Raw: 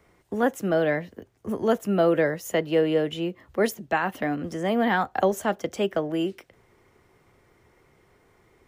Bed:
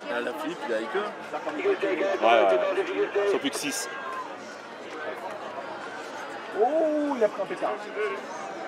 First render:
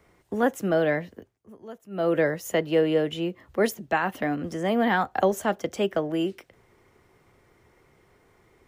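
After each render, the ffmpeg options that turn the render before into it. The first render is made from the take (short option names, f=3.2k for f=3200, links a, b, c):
-filter_complex "[0:a]asplit=3[a][b][c];[a]atrim=end=1.39,asetpts=PTS-STARTPTS,afade=t=out:st=1.01:d=0.38:c=qsin:silence=0.112202[d];[b]atrim=start=1.39:end=1.9,asetpts=PTS-STARTPTS,volume=-19dB[e];[c]atrim=start=1.9,asetpts=PTS-STARTPTS,afade=t=in:d=0.38:c=qsin:silence=0.112202[f];[d][e][f]concat=n=3:v=0:a=1"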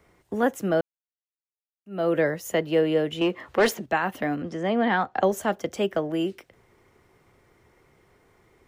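-filter_complex "[0:a]asettb=1/sr,asplit=3[a][b][c];[a]atrim=end=3.214[d];[b]atrim=start=3.21:end=3.86,asetpts=PTS-STARTPTS,afade=t=in:d=0.004:c=qsin,afade=t=out:st=0.646:d=0.004:c=qsin,asplit=2[e][f];[f]highpass=f=720:p=1,volume=20dB,asoftclip=type=tanh:threshold=-11.5dB[g];[e][g]amix=inputs=2:normalize=0,lowpass=f=2.8k:p=1,volume=-6dB[h];[c]atrim=start=3.856[i];[d][h]acrossfade=d=0.004:c1=hsin:c2=qsin[j];[j][i]acrossfade=d=0.004:c1=qsin:c2=hsin,asettb=1/sr,asplit=3[k][l][m];[k]atrim=end=4.424[n];[l]atrim=start=4.42:end=5.23,asetpts=PTS-STARTPTS,afade=t=in:d=0.004:c=qsin,afade=t=out:st=0.806:d=0.004:c=qsin,highpass=110,lowpass=4.9k[o];[m]atrim=start=5.226[p];[n][o]acrossfade=d=0.004:c1=hsin:c2=qsin[q];[q][p]acrossfade=d=0.004:c1=qsin:c2=hsin,asplit=3[r][s][t];[r]atrim=end=0.81,asetpts=PTS-STARTPTS,afade=t=out:st=0.806:d=0.004:c=hsin[u];[s]atrim=start=0.81:end=1.86,asetpts=PTS-STARTPTS,volume=0[v];[t]atrim=start=1.86,asetpts=PTS-STARTPTS,afade=t=in:d=0.004:c=hsin[w];[u][v][w]concat=n=3:v=0:a=1"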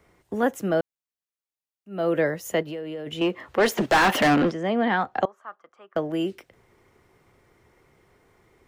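-filter_complex "[0:a]asplit=3[a][b][c];[a]afade=t=out:st=2.62:d=0.02[d];[b]acompressor=threshold=-31dB:ratio=5:attack=3.2:release=140:knee=1:detection=peak,afade=t=in:st=2.62:d=0.02,afade=t=out:st=3.06:d=0.02[e];[c]afade=t=in:st=3.06:d=0.02[f];[d][e][f]amix=inputs=3:normalize=0,asplit=3[g][h][i];[g]afade=t=out:st=3.77:d=0.02[j];[h]asplit=2[k][l];[l]highpass=f=720:p=1,volume=30dB,asoftclip=type=tanh:threshold=-11dB[m];[k][m]amix=inputs=2:normalize=0,lowpass=f=4k:p=1,volume=-6dB,afade=t=in:st=3.77:d=0.02,afade=t=out:st=4.5:d=0.02[n];[i]afade=t=in:st=4.5:d=0.02[o];[j][n][o]amix=inputs=3:normalize=0,asettb=1/sr,asplit=3[p][q][r];[p]atrim=end=5.254[s];[q]atrim=start=5.25:end=5.96,asetpts=PTS-STARTPTS,afade=t=in:d=0.004:c=qsin,afade=t=out:st=0.706:d=0.004:c=qsin,bandpass=f=1.2k:t=q:w=8.3[t];[r]atrim=start=5.956[u];[s][t]acrossfade=d=0.004:c1=hsin:c2=qsin[v];[v][u]acrossfade=d=0.004:c1=qsin:c2=hsin"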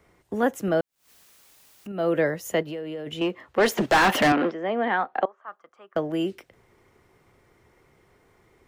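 -filter_complex "[0:a]asettb=1/sr,asplit=3[a][b][c];[a]atrim=end=0.684[d];[b]atrim=start=0.68:end=1.92,asetpts=PTS-STARTPTS,afade=t=in:d=0.004:c=qsin,afade=t=out:st=1.236:d=0.004:c=qsin,acompressor=mode=upward:threshold=-26dB:ratio=2.5:attack=3.2:release=140:knee=2.83:detection=peak[e];[c]atrim=start=1.916[f];[d][e]acrossfade=d=0.004:c1=hsin:c2=qsin[g];[g][f]acrossfade=d=0.004:c1=qsin:c2=hsin,asettb=1/sr,asplit=3[h][i][j];[h]atrim=end=4.324[k];[i]atrim=start=4.32:end=5.48,asetpts=PTS-STARTPTS,afade=t=in:d=0.004:c=qsin,afade=t=out:st=1.156:d=0.004:c=qsin,highpass=310,lowpass=2.8k[l];[j]atrim=start=5.476[m];[k][l]acrossfade=d=0.004:c1=hsin:c2=qsin[n];[n][m]acrossfade=d=0.004:c1=qsin:c2=hsin,asplit=2[o][p];[o]atrim=end=3.56,asetpts=PTS-STARTPTS,afade=t=out:st=2.94:d=0.62:c=qsin:silence=0.298538[q];[p]atrim=start=3.56,asetpts=PTS-STARTPTS,afade=t=in:d=0.004:c=hsin:silence=0.298538[r];[q][r]concat=n=2:v=0:a=1"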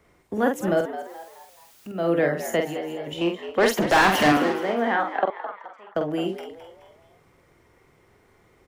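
-filter_complex "[0:a]asplit=2[a][b];[b]adelay=47,volume=-5dB[c];[a][c]amix=inputs=2:normalize=0,asplit=5[d][e][f][g][h];[e]adelay=213,afreqshift=84,volume=-12dB[i];[f]adelay=426,afreqshift=168,volume=-19.3dB[j];[g]adelay=639,afreqshift=252,volume=-26.7dB[k];[h]adelay=852,afreqshift=336,volume=-34dB[l];[d][i][j][k][l]amix=inputs=5:normalize=0"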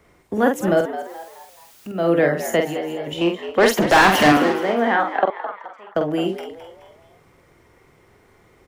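-af "volume=4.5dB"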